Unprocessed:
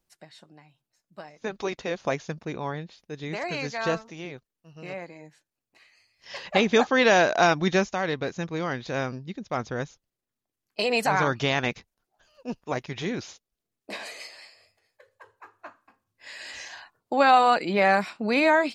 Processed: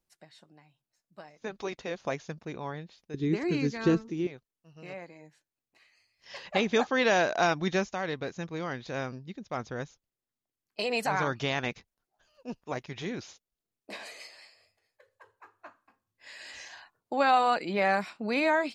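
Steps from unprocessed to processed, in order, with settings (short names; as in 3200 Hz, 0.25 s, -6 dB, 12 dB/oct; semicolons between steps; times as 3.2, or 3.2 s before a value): 3.14–4.27 resonant low shelf 470 Hz +9.5 dB, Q 3; gain -5.5 dB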